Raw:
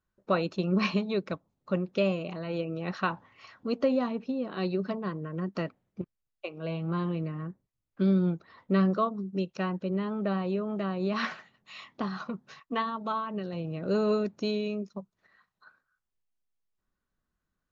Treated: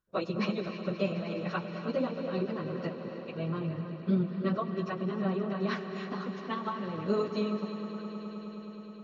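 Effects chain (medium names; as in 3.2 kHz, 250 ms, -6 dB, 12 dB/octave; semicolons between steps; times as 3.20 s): plain phase-vocoder stretch 0.51×; echo with a slow build-up 105 ms, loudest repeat 5, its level -17 dB; reverberation, pre-delay 3 ms, DRR 9 dB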